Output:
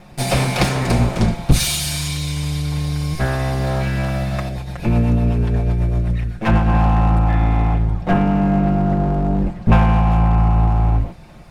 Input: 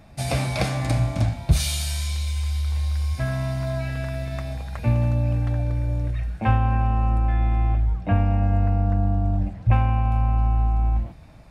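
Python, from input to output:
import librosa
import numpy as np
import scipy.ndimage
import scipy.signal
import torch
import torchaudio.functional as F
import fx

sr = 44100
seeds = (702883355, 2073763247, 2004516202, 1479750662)

y = fx.lower_of_two(x, sr, delay_ms=5.6)
y = fx.rotary(y, sr, hz=8.0, at=(4.49, 6.74))
y = y * 10.0 ** (8.0 / 20.0)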